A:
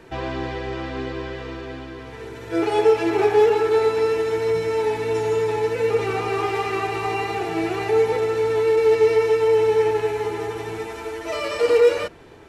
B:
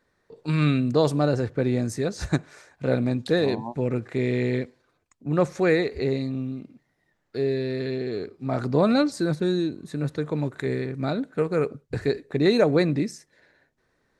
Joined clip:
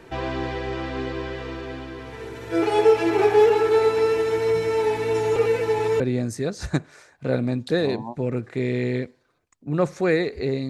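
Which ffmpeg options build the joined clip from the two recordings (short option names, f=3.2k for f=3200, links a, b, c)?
-filter_complex "[0:a]apad=whole_dur=10.69,atrim=end=10.69,asplit=2[a][b];[a]atrim=end=5.362[c];[b]atrim=start=5.358:end=6.002,asetpts=PTS-STARTPTS,areverse[d];[1:a]atrim=start=1.588:end=6.28[e];[c][d]acrossfade=d=0.004:c1=hsin:c2=hsin[f];[f][e]acrossfade=d=0.004:c1=hsin:c2=hsin"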